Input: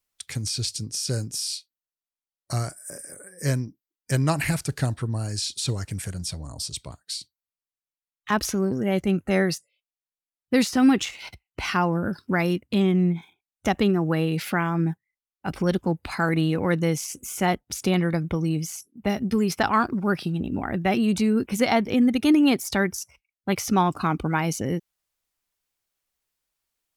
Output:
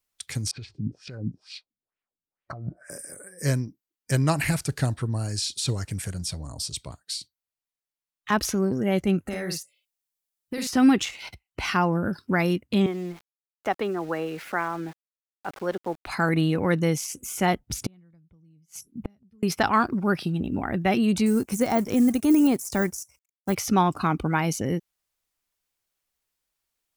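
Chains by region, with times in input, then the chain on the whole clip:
0:00.51–0:02.90: compressor whose output falls as the input rises −34 dBFS + auto-filter low-pass sine 2.2 Hz 200–2,600 Hz
0:09.26–0:10.67: high-shelf EQ 4,700 Hz +9.5 dB + downward compressor 8 to 1, threshold −27 dBFS + double-tracking delay 49 ms −4.5 dB
0:12.86–0:16.07: three-way crossover with the lows and the highs turned down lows −18 dB, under 350 Hz, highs −13 dB, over 2,200 Hz + centre clipping without the shift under −43.5 dBFS
0:17.59–0:19.43: bass and treble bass +13 dB, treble −1 dB + gate with flip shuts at −14 dBFS, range −41 dB
0:21.26–0:23.55: mu-law and A-law mismatch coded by A + de-essing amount 100% + high shelf with overshoot 5,100 Hz +12 dB, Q 1.5
whole clip: no processing

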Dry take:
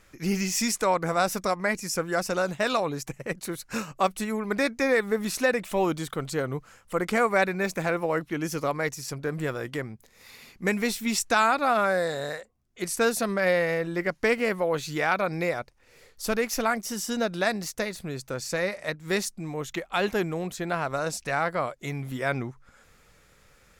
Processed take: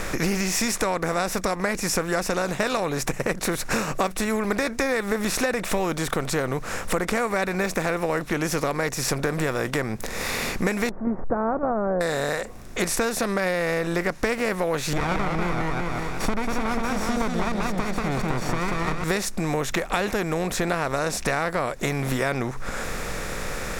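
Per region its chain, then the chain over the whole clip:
0:10.89–0:12.01: converter with a step at zero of −32.5 dBFS + noise gate −25 dBFS, range −9 dB + Gaussian smoothing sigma 11 samples
0:14.93–0:19.04: lower of the sound and its delayed copy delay 0.88 ms + low-pass filter 1,100 Hz 6 dB per octave + feedback echo with a swinging delay time 187 ms, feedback 31%, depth 145 cents, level −4.5 dB
whole clip: compressor on every frequency bin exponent 0.6; low-shelf EQ 62 Hz +11.5 dB; downward compressor 6 to 1, threshold −30 dBFS; level +8.5 dB

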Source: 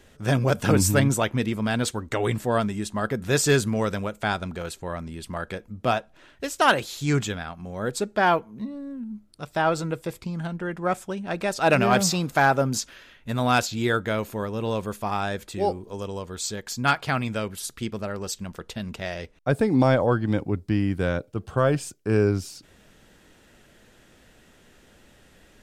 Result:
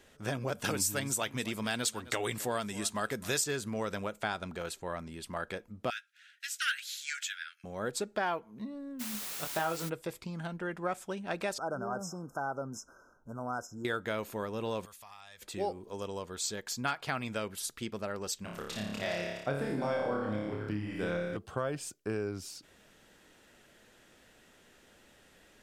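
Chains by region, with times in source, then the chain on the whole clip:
0:00.64–0:03.44: high-shelf EQ 2,600 Hz +11 dB + single-tap delay 262 ms −20.5 dB
0:05.90–0:07.64: Butterworth high-pass 1,400 Hz 96 dB per octave + double-tracking delay 13 ms −13 dB
0:08.99–0:09.88: double-tracking delay 24 ms −5.5 dB + background noise white −36 dBFS
0:11.58–0:13.85: high-shelf EQ 5,400 Hz −12 dB + downward compressor 1.5 to 1, threshold −43 dBFS + linear-phase brick-wall band-stop 1,600–5,100 Hz
0:14.85–0:15.42: guitar amp tone stack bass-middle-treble 10-0-10 + downward compressor 4 to 1, threshold −44 dBFS + notch filter 1,500 Hz, Q 7.5
0:18.42–0:21.37: delay that plays each chunk backwards 246 ms, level −8 dB + flutter between parallel walls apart 4.9 metres, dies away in 0.79 s
whole clip: downward compressor 6 to 1, threshold −24 dBFS; low-shelf EQ 200 Hz −9 dB; level −4 dB

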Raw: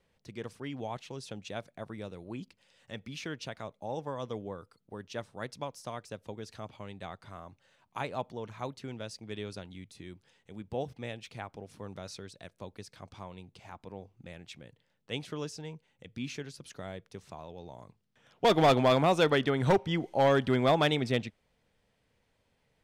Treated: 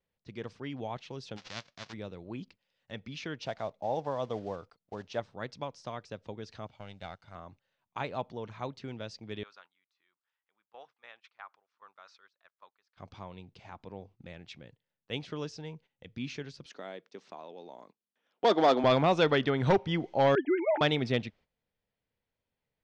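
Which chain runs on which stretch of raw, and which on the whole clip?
0:01.36–0:01.92: spectral envelope flattened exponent 0.1 + low-pass filter 6,400 Hz 24 dB per octave
0:03.42–0:05.20: one scale factor per block 5 bits + parametric band 690 Hz +8.5 dB 0.67 octaves
0:06.67–0:07.35: mu-law and A-law mismatch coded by A + high-shelf EQ 7,900 Hz +9.5 dB + comb filter 1.4 ms, depth 43%
0:09.43–0:12.97: resonant band-pass 1,200 Hz, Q 2.8 + spectral tilt +4 dB per octave
0:16.66–0:18.84: high-pass filter 230 Hz 24 dB per octave + dynamic equaliser 2,500 Hz, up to −8 dB, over −48 dBFS, Q 2.3
0:20.35–0:20.81: three sine waves on the formant tracks + phaser with its sweep stopped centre 750 Hz, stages 8
whole clip: noise gate −56 dBFS, range −14 dB; low-pass filter 5,700 Hz 24 dB per octave

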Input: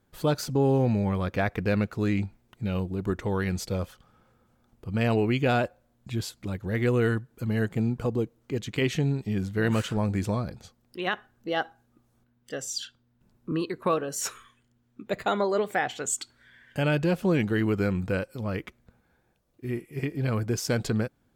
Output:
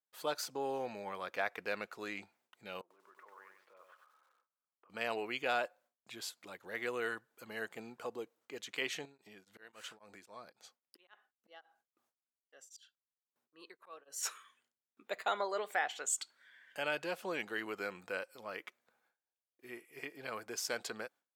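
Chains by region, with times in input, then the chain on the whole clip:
0:02.81–0:04.90: downward compressor 5 to 1, threshold −43 dBFS + loudspeaker in its box 450–2,200 Hz, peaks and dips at 460 Hz −3 dB, 770 Hz −7 dB, 1,100 Hz +6 dB, 2,000 Hz −3 dB + feedback echo at a low word length 94 ms, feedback 35%, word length 11 bits, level −4 dB
0:09.05–0:14.23: volume swells 511 ms + downward compressor 10 to 1, threshold −30 dBFS + tremolo along a rectified sine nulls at 3.7 Hz
whole clip: noise gate with hold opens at −56 dBFS; high-pass filter 670 Hz 12 dB per octave; level −5.5 dB

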